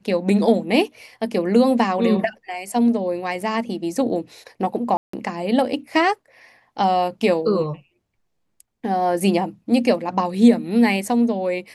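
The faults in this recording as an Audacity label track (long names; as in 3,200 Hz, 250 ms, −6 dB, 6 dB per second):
4.970000	5.130000	drop-out 164 ms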